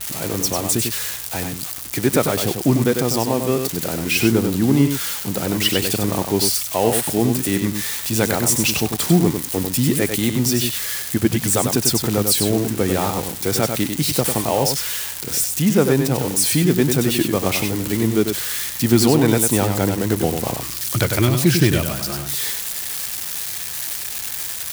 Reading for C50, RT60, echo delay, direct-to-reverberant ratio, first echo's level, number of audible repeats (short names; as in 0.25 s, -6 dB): none, none, 97 ms, none, -6.0 dB, 1